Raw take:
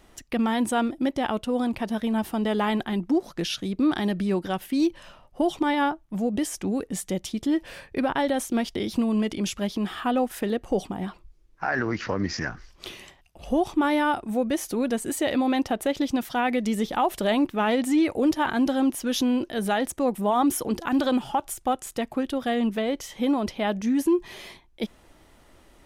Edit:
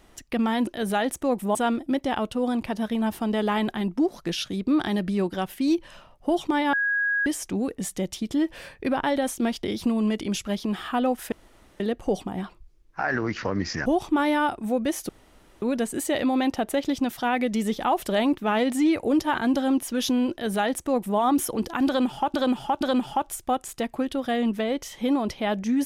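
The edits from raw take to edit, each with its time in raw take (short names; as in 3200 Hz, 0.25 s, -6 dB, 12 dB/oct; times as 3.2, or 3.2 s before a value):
5.85–6.38 bleep 1650 Hz -21 dBFS
10.44 insert room tone 0.48 s
12.5–13.51 cut
14.74 insert room tone 0.53 s
19.43–20.31 copy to 0.67
20.99–21.46 loop, 3 plays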